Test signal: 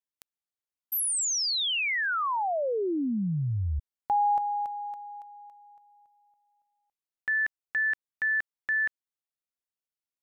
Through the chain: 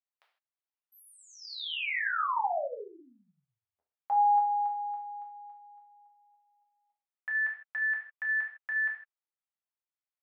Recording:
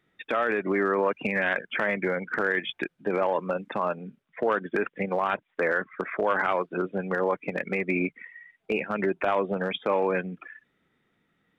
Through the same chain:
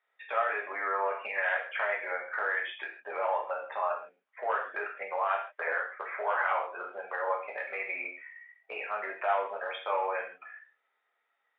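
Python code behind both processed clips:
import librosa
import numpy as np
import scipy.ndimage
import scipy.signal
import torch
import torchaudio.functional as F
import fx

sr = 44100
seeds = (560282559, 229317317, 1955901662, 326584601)

y = scipy.signal.sosfilt(scipy.signal.butter(4, 650.0, 'highpass', fs=sr, output='sos'), x)
y = fx.air_absorb(y, sr, metres=410.0)
y = fx.rev_gated(y, sr, seeds[0], gate_ms=180, shape='falling', drr_db=-2.0)
y = y * librosa.db_to_amplitude(-3.5)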